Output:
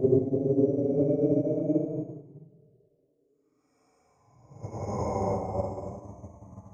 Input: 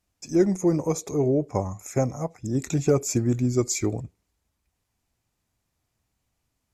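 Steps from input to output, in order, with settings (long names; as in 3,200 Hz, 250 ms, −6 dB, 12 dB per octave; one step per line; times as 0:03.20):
extreme stretch with random phases 19×, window 0.05 s, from 0:01.30
backwards echo 49 ms −12 dB
expander for the loud parts 2.5 to 1, over −31 dBFS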